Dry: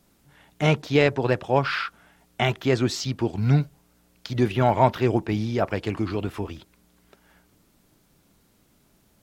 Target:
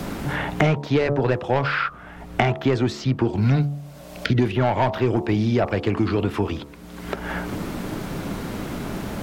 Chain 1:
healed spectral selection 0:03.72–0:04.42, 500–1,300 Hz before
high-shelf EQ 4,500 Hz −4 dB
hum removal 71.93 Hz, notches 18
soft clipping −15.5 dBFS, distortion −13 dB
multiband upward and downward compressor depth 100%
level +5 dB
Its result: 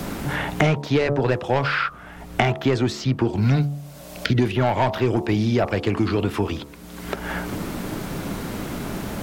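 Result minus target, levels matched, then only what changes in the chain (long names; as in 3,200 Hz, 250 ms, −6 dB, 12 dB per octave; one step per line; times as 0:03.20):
8,000 Hz band +3.5 dB
change: high-shelf EQ 4,500 Hz −11.5 dB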